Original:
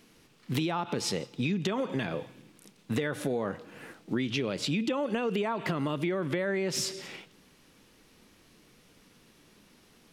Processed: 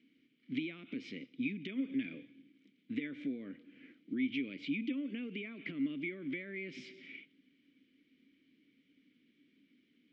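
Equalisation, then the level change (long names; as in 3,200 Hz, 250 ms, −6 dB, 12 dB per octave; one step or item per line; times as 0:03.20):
dynamic equaliser 2,300 Hz, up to +7 dB, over −54 dBFS, Q 3.1
Gaussian smoothing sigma 1.5 samples
formant filter i
+1.0 dB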